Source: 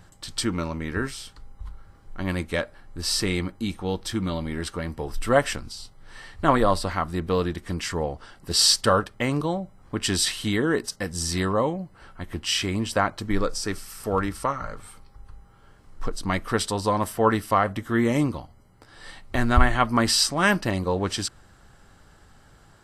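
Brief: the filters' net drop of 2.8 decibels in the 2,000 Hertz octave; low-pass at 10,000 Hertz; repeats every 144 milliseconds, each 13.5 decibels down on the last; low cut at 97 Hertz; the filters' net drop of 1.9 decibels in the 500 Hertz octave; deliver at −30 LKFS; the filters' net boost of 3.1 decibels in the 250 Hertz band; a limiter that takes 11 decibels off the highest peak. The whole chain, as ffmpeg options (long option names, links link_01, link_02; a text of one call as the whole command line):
ffmpeg -i in.wav -af "highpass=97,lowpass=10000,equalizer=frequency=250:width_type=o:gain=5,equalizer=frequency=500:width_type=o:gain=-3.5,equalizer=frequency=2000:width_type=o:gain=-3.5,alimiter=limit=-16.5dB:level=0:latency=1,aecho=1:1:144|288:0.211|0.0444,volume=-1.5dB" out.wav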